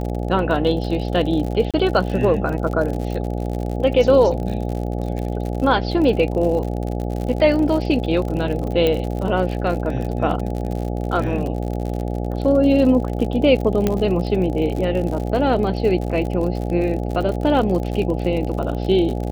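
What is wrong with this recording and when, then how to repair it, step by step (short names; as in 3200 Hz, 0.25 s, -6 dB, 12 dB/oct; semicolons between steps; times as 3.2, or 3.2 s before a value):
buzz 60 Hz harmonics 14 -24 dBFS
crackle 56/s -26 dBFS
1.71–1.74 gap 27 ms
8.87 pop -8 dBFS
13.87 pop -6 dBFS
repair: de-click; de-hum 60 Hz, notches 14; interpolate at 1.71, 27 ms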